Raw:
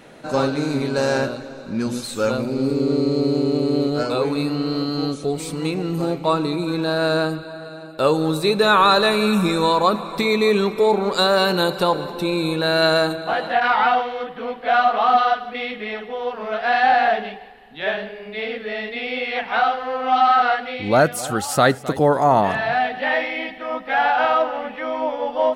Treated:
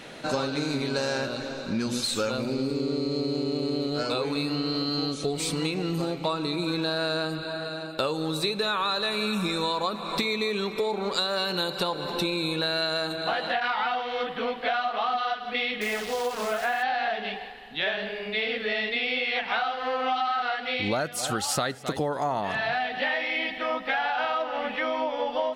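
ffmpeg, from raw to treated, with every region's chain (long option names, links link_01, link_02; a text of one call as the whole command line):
ffmpeg -i in.wav -filter_complex "[0:a]asettb=1/sr,asplit=3[link_01][link_02][link_03];[link_01]atrim=end=15.814[link_04];[link_02]atrim=start=15.81:end=16.83,asetpts=PTS-STARTPTS,afade=type=in:duration=0.004:curve=qsin,afade=type=out:start_time=1.016:duration=0.004:curve=qsin,lowpass=2400,acrusher=bits=7:dc=4:mix=0:aa=0.000001[link_05];[link_03]atrim=start=16.826[link_06];[link_04][link_05]acrossfade=duration=0.004:curve1=hsin:curve2=qsin[link_07];[link_07][link_06]acrossfade=duration=0.004:curve1=qsin:curve2=hsin,equalizer=frequency=3900:width_type=o:width=2.1:gain=8,acompressor=threshold=-24dB:ratio=12" out.wav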